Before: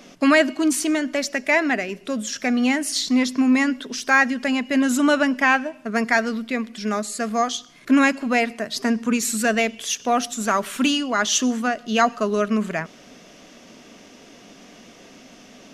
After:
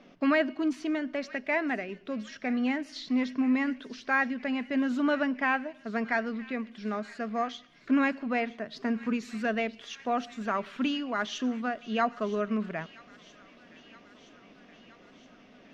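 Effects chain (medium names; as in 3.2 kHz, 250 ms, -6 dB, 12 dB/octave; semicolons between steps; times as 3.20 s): distance through air 250 m; feedback echo behind a high-pass 970 ms, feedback 68%, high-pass 2 kHz, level -15.5 dB; trim -8 dB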